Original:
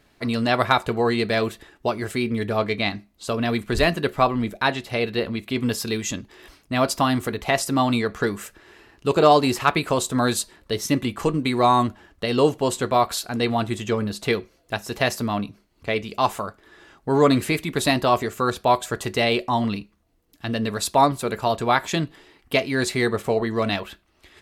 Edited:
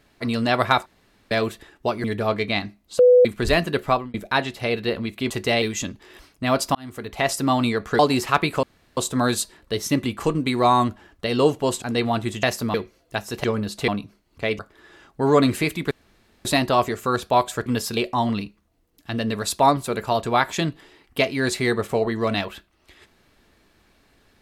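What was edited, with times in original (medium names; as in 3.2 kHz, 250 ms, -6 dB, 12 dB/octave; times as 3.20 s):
0.86–1.31 s: room tone
2.04–2.34 s: delete
3.29–3.55 s: bleep 496 Hz -9 dBFS
4.19–4.44 s: fade out
5.60–5.91 s: swap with 19.00–19.32 s
7.04–7.59 s: fade in
8.28–9.32 s: delete
9.96 s: insert room tone 0.34 s
12.81–13.27 s: delete
13.88–14.32 s: swap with 15.02–15.33 s
16.04–16.47 s: delete
17.79 s: insert room tone 0.54 s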